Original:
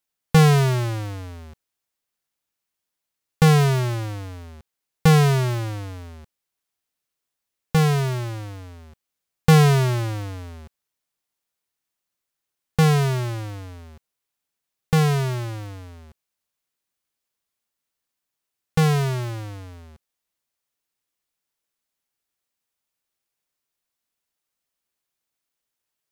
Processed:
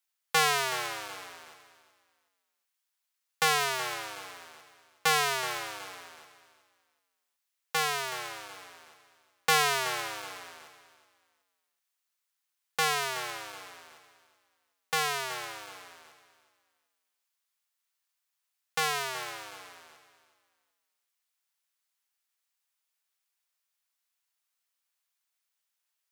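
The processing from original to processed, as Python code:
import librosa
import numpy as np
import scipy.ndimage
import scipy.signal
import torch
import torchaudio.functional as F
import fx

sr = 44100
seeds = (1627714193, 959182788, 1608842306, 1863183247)

y = scipy.signal.sosfilt(scipy.signal.butter(2, 930.0, 'highpass', fs=sr, output='sos'), x)
y = fx.echo_feedback(y, sr, ms=373, feedback_pct=29, wet_db=-14)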